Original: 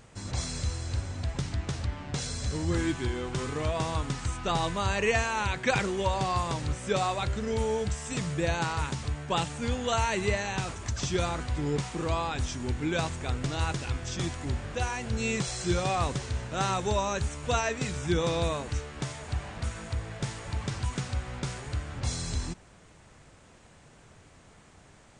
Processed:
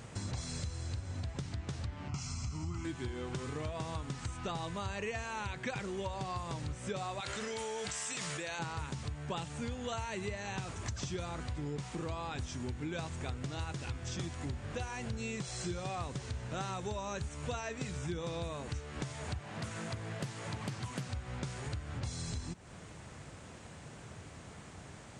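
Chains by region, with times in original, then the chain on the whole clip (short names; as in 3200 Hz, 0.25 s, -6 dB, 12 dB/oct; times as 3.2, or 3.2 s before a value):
2.08–2.85 bell 1300 Hz +6.5 dB 0.25 oct + fixed phaser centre 2500 Hz, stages 8
7.2–8.59 HPF 1300 Hz 6 dB/oct + fast leveller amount 100%
19.38–21.07 HPF 110 Hz 24 dB/oct + Doppler distortion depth 0.42 ms
whole clip: HPF 82 Hz; low shelf 140 Hz +7 dB; compressor, threshold -41 dBFS; gain +4 dB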